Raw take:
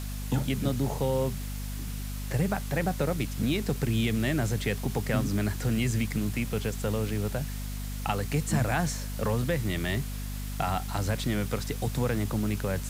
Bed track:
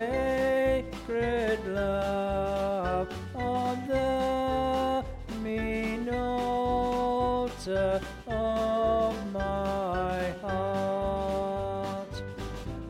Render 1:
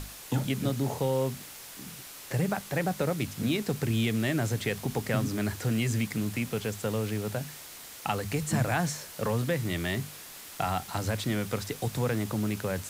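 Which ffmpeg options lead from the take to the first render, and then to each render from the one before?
ffmpeg -i in.wav -af "bandreject=frequency=50:width_type=h:width=6,bandreject=frequency=100:width_type=h:width=6,bandreject=frequency=150:width_type=h:width=6,bandreject=frequency=200:width_type=h:width=6,bandreject=frequency=250:width_type=h:width=6" out.wav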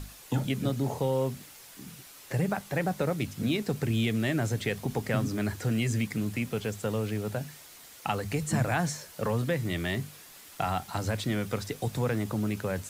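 ffmpeg -i in.wav -af "afftdn=noise_reduction=6:noise_floor=-46" out.wav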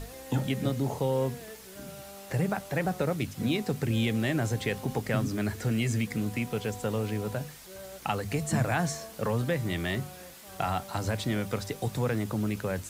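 ffmpeg -i in.wav -i bed.wav -filter_complex "[1:a]volume=-18dB[link_01];[0:a][link_01]amix=inputs=2:normalize=0" out.wav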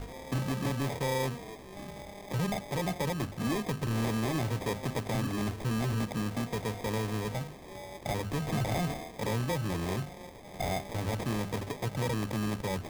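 ffmpeg -i in.wav -af "acrusher=samples=31:mix=1:aa=0.000001,asoftclip=type=tanh:threshold=-25dB" out.wav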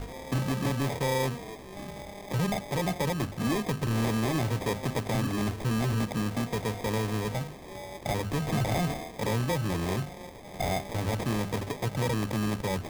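ffmpeg -i in.wav -af "volume=3dB" out.wav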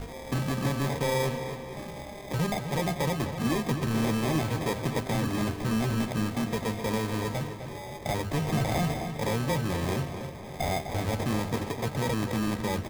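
ffmpeg -i in.wav -filter_complex "[0:a]asplit=2[link_01][link_02];[link_02]adelay=13,volume=-11dB[link_03];[link_01][link_03]amix=inputs=2:normalize=0,asplit=2[link_04][link_05];[link_05]adelay=255,lowpass=frequency=4300:poles=1,volume=-9dB,asplit=2[link_06][link_07];[link_07]adelay=255,lowpass=frequency=4300:poles=1,volume=0.48,asplit=2[link_08][link_09];[link_09]adelay=255,lowpass=frequency=4300:poles=1,volume=0.48,asplit=2[link_10][link_11];[link_11]adelay=255,lowpass=frequency=4300:poles=1,volume=0.48,asplit=2[link_12][link_13];[link_13]adelay=255,lowpass=frequency=4300:poles=1,volume=0.48[link_14];[link_04][link_06][link_08][link_10][link_12][link_14]amix=inputs=6:normalize=0" out.wav

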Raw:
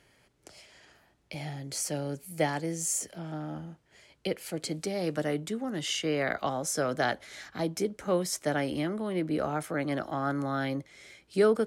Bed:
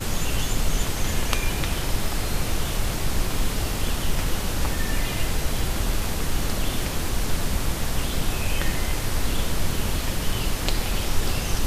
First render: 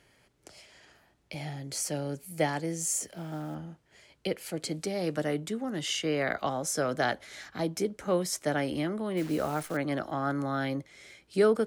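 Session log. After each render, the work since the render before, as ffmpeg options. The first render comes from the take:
ffmpeg -i in.wav -filter_complex "[0:a]asplit=3[link_01][link_02][link_03];[link_01]afade=type=out:start_time=3.03:duration=0.02[link_04];[link_02]acrusher=bits=6:mode=log:mix=0:aa=0.000001,afade=type=in:start_time=3.03:duration=0.02,afade=type=out:start_time=3.54:duration=0.02[link_05];[link_03]afade=type=in:start_time=3.54:duration=0.02[link_06];[link_04][link_05][link_06]amix=inputs=3:normalize=0,asettb=1/sr,asplit=3[link_07][link_08][link_09];[link_07]atrim=end=9.174[link_10];[link_08]atrim=start=9.17:end=9.77,asetpts=PTS-STARTPTS,afade=type=in:duration=0.004:curve=qsin,afade=type=out:start_time=0.596:duration=0.004:curve=qsin,acrusher=bits=8:dc=4:mix=0:aa=0.000001[link_11];[link_09]atrim=start=9.766[link_12];[link_10][link_11]acrossfade=duration=0.004:curve1=hsin:curve2=qsin[link_13];[link_13][link_12]acrossfade=duration=0.004:curve1=qsin:curve2=hsin" out.wav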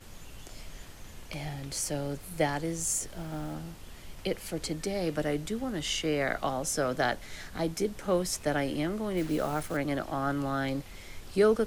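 ffmpeg -i in.wav -i bed.wav -filter_complex "[1:a]volume=-22.5dB[link_01];[0:a][link_01]amix=inputs=2:normalize=0" out.wav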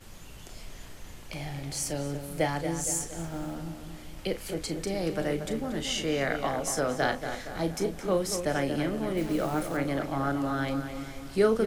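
ffmpeg -i in.wav -filter_complex "[0:a]asplit=2[link_01][link_02];[link_02]adelay=36,volume=-10dB[link_03];[link_01][link_03]amix=inputs=2:normalize=0,asplit=2[link_04][link_05];[link_05]adelay=233,lowpass=frequency=2900:poles=1,volume=-8dB,asplit=2[link_06][link_07];[link_07]adelay=233,lowpass=frequency=2900:poles=1,volume=0.53,asplit=2[link_08][link_09];[link_09]adelay=233,lowpass=frequency=2900:poles=1,volume=0.53,asplit=2[link_10][link_11];[link_11]adelay=233,lowpass=frequency=2900:poles=1,volume=0.53,asplit=2[link_12][link_13];[link_13]adelay=233,lowpass=frequency=2900:poles=1,volume=0.53,asplit=2[link_14][link_15];[link_15]adelay=233,lowpass=frequency=2900:poles=1,volume=0.53[link_16];[link_04][link_06][link_08][link_10][link_12][link_14][link_16]amix=inputs=7:normalize=0" out.wav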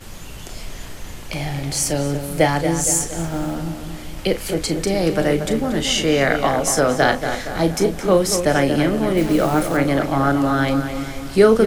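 ffmpeg -i in.wav -af "volume=11.5dB,alimiter=limit=-2dB:level=0:latency=1" out.wav

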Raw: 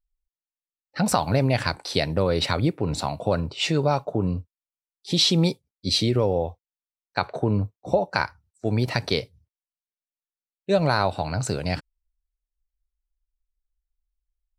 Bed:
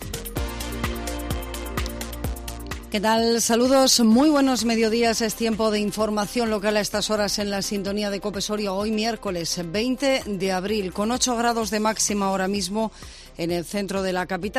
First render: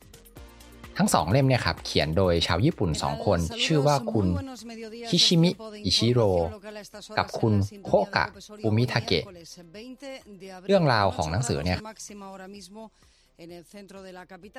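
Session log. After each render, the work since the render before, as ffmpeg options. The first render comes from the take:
ffmpeg -i in.wav -i bed.wav -filter_complex "[1:a]volume=-18.5dB[link_01];[0:a][link_01]amix=inputs=2:normalize=0" out.wav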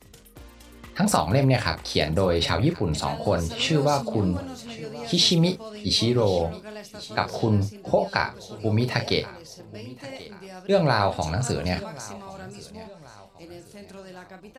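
ffmpeg -i in.wav -filter_complex "[0:a]asplit=2[link_01][link_02];[link_02]adelay=38,volume=-8.5dB[link_03];[link_01][link_03]amix=inputs=2:normalize=0,aecho=1:1:1082|2164|3246:0.112|0.0494|0.0217" out.wav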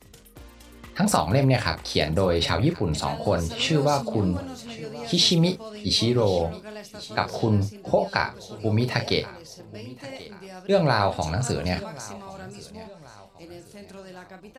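ffmpeg -i in.wav -af anull out.wav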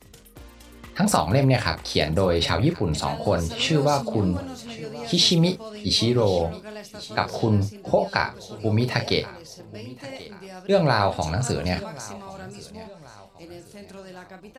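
ffmpeg -i in.wav -af "volume=1dB" out.wav

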